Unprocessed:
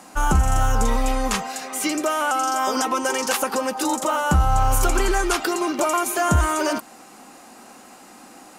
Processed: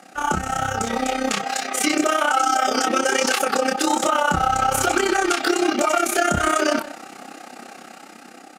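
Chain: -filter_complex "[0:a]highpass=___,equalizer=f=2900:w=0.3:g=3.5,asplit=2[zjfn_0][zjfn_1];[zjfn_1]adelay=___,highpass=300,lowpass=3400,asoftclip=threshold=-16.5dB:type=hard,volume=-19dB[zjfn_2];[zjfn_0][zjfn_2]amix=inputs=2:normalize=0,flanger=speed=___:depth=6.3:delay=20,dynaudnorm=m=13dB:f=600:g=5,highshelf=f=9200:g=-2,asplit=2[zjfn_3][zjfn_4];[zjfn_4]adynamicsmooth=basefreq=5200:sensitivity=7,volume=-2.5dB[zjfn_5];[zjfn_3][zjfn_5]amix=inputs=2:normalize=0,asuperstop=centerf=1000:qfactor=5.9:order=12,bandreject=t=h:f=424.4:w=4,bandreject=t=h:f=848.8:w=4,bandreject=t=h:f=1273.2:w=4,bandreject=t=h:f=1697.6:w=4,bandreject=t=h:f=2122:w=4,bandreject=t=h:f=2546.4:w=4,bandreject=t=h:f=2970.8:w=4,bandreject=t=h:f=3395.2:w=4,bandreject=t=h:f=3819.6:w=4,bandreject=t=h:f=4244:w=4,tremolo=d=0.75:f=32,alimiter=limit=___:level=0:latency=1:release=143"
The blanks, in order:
150, 160, 1.2, -8.5dB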